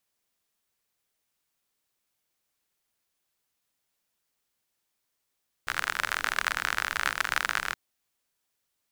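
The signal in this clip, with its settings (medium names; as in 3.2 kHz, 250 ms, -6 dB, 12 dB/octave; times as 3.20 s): rain from filtered ticks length 2.07 s, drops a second 49, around 1.5 kHz, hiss -17 dB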